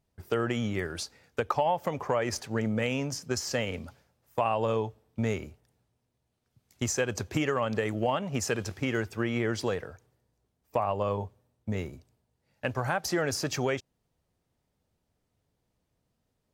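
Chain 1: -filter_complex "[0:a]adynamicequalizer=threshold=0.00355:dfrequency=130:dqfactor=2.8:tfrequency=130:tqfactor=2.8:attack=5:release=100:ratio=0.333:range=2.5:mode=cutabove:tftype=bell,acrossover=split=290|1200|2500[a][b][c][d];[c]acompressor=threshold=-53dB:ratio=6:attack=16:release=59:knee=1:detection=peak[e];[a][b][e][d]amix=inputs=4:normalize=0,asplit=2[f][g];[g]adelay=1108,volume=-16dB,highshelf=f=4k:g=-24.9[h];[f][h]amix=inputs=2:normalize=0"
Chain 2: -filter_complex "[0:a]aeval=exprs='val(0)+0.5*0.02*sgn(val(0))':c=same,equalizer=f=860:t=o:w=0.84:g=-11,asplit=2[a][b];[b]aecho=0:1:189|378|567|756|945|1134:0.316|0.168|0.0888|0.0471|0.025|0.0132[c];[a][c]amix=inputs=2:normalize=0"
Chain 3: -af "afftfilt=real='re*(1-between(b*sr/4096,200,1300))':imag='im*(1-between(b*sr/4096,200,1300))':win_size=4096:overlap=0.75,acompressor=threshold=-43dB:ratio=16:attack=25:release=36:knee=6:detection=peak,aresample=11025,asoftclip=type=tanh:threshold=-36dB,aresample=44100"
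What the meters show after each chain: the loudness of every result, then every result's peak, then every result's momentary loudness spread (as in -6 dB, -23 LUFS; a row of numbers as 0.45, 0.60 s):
-32.0, -31.5, -45.5 LUFS; -13.5, -13.5, -32.5 dBFS; 19, 12, 6 LU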